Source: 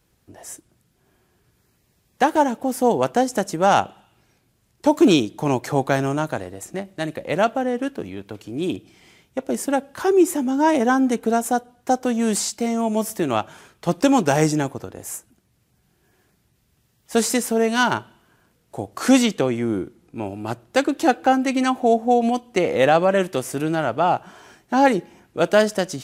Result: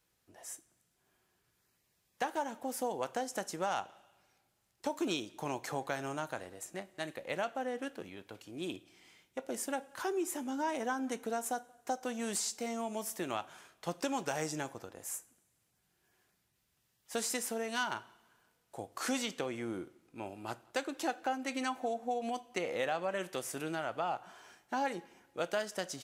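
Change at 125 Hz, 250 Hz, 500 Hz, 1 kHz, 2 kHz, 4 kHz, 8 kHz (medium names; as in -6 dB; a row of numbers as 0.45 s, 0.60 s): -20.5 dB, -19.5 dB, -17.5 dB, -16.0 dB, -13.5 dB, -12.5 dB, -11.0 dB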